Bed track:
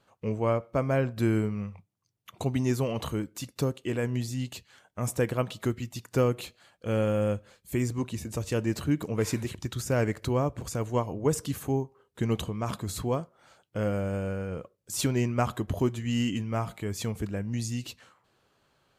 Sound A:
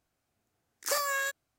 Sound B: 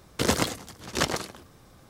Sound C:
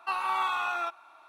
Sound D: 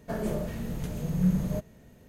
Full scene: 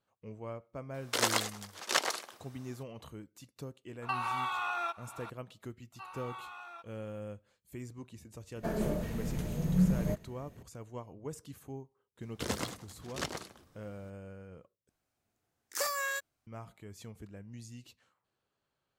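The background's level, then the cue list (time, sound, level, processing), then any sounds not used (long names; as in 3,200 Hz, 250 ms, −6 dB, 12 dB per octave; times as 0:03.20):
bed track −16 dB
0:00.94: mix in B −2 dB + high-pass filter 610 Hz
0:04.02: mix in C −5 dB + multiband upward and downward compressor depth 100%
0:05.92: mix in C −17 dB
0:08.55: mix in D −2 dB
0:12.21: mix in B −11.5 dB
0:14.89: overwrite with A −3.5 dB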